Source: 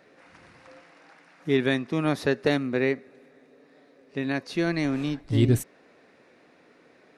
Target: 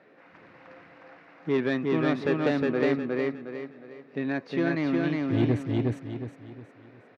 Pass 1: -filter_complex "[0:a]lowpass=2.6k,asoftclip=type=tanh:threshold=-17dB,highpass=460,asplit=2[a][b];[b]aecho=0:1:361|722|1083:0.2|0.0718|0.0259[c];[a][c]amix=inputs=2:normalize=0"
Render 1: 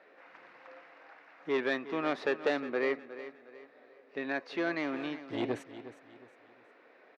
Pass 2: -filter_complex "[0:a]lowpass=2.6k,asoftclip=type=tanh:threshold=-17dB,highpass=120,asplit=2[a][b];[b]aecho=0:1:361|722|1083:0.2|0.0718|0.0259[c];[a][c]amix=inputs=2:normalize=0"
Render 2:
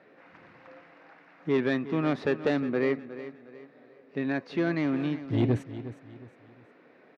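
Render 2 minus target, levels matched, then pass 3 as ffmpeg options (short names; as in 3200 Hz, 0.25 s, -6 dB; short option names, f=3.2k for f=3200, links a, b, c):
echo-to-direct -12 dB
-filter_complex "[0:a]lowpass=2.6k,asoftclip=type=tanh:threshold=-17dB,highpass=120,asplit=2[a][b];[b]aecho=0:1:361|722|1083|1444|1805:0.794|0.286|0.103|0.0371|0.0133[c];[a][c]amix=inputs=2:normalize=0"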